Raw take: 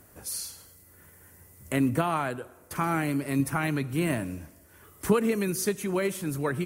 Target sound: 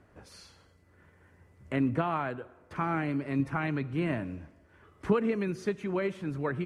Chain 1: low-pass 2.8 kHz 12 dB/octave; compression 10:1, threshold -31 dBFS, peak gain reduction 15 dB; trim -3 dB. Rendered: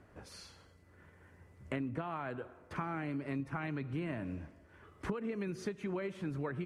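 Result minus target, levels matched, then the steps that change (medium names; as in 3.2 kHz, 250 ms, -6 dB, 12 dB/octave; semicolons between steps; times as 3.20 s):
compression: peak gain reduction +15 dB
remove: compression 10:1, threshold -31 dBFS, peak gain reduction 15 dB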